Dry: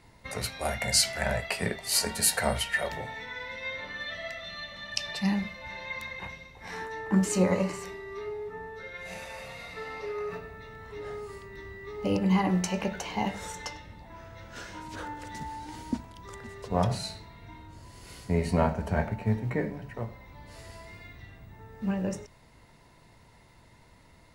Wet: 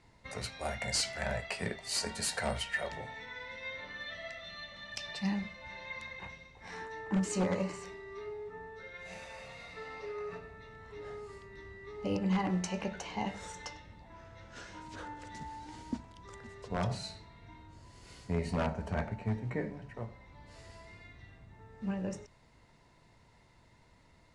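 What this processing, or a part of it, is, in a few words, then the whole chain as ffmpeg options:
synthesiser wavefolder: -af "aeval=exprs='0.133*(abs(mod(val(0)/0.133+3,4)-2)-1)':c=same,lowpass=f=8.9k:w=0.5412,lowpass=f=8.9k:w=1.3066,volume=-6dB"

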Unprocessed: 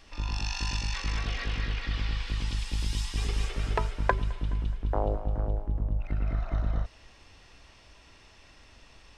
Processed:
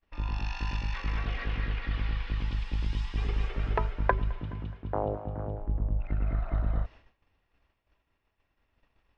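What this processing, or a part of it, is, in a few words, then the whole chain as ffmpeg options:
hearing-loss simulation: -filter_complex "[0:a]asettb=1/sr,asplit=3[a][b][c];[a]atrim=end=4.414[d];[b]atrim=start=4.41:end=5.6,asetpts=PTS-STARTPTS,afade=t=in:d=0.004:c=qsin,afade=t=out:st=1.186:d=0.004:c=qsin,highpass=f=71:w=0.5412,highpass=f=71:w=1.3066[e];[c]atrim=start=5.596[f];[d][e]acrossfade=d=0.004:c1=hsin:c2=qsin[g];[g][f]acrossfade=d=0.004:c1=qsin:c2=hsin,lowpass=2.4k,agate=range=-33dB:threshold=-42dB:ratio=3:detection=peak"

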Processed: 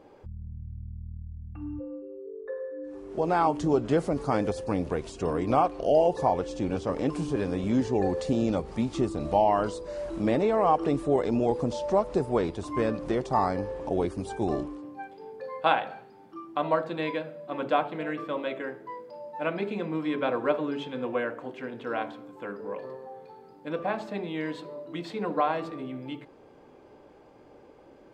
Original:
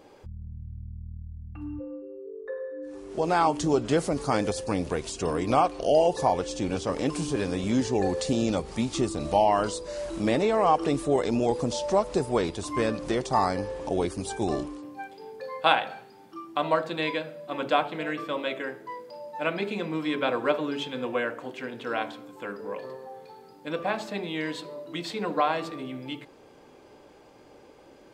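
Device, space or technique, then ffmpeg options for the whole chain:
through cloth: -af "highshelf=f=2.7k:g=-12.5"

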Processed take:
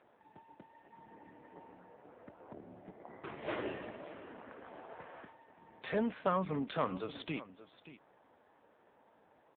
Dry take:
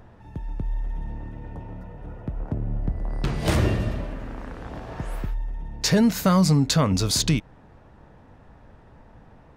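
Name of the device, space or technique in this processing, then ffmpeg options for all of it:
satellite phone: -af "highpass=370,lowpass=3.3k,aecho=1:1:578:0.168,volume=-7.5dB" -ar 8000 -c:a libopencore_amrnb -b:a 5900

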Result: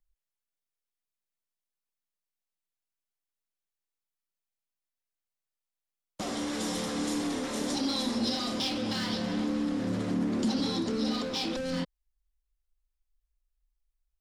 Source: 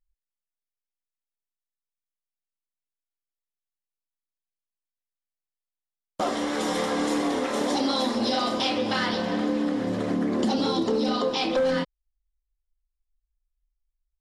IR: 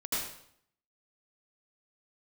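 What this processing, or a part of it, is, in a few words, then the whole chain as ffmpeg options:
one-band saturation: -filter_complex "[0:a]acrossover=split=260|3700[a][b][c];[b]asoftclip=type=tanh:threshold=-37dB[d];[a][d][c]amix=inputs=3:normalize=0"

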